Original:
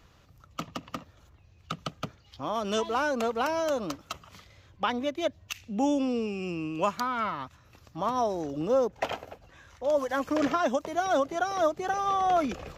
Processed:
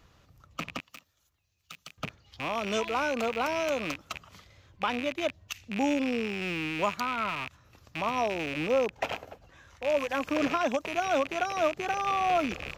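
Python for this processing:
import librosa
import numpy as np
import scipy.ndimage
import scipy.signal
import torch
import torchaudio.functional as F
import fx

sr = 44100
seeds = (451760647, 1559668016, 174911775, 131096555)

y = fx.rattle_buzz(x, sr, strikes_db=-46.0, level_db=-22.0)
y = fx.pre_emphasis(y, sr, coefficient=0.9, at=(0.8, 1.98))
y = y * 10.0 ** (-1.5 / 20.0)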